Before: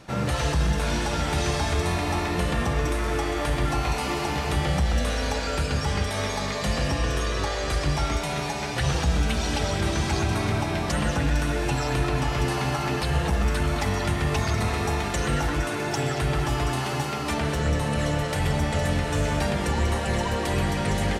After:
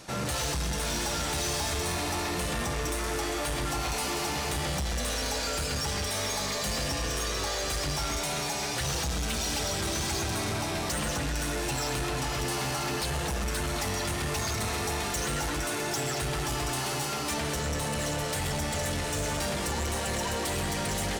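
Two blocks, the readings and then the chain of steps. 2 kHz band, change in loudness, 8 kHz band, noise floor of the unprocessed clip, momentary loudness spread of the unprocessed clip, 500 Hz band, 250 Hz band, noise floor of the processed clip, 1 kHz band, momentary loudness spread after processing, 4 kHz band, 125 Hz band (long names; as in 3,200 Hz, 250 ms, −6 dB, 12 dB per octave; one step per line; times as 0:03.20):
−4.0 dB, −4.0 dB, +4.0 dB, −29 dBFS, 2 LU, −5.0 dB, −7.0 dB, −32 dBFS, −4.5 dB, 1 LU, 0.0 dB, −9.0 dB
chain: bass and treble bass −4 dB, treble +10 dB
soft clipping −27 dBFS, distortion −10 dB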